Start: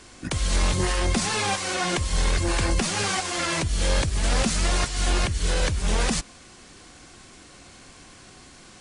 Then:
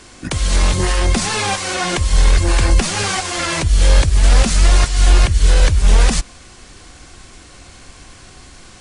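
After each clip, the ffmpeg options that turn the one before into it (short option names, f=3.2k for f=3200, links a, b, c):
-af "asubboost=boost=2.5:cutoff=100,volume=6dB"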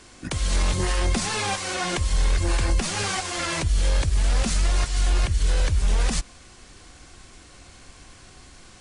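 -af "alimiter=limit=-6.5dB:level=0:latency=1:release=56,volume=-7dB"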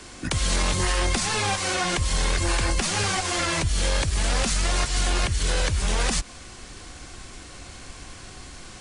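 -filter_complex "[0:a]acrossover=split=110|740[a][b][c];[a]acompressor=threshold=-31dB:ratio=4[d];[b]acompressor=threshold=-36dB:ratio=4[e];[c]acompressor=threshold=-30dB:ratio=4[f];[d][e][f]amix=inputs=3:normalize=0,volume=6dB"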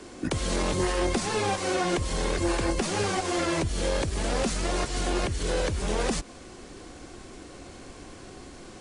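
-af "equalizer=f=370:t=o:w=2.3:g=12.5,volume=-7.5dB"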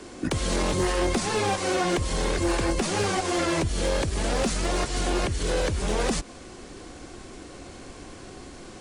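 -af "asoftclip=type=hard:threshold=-19.5dB,volume=2dB"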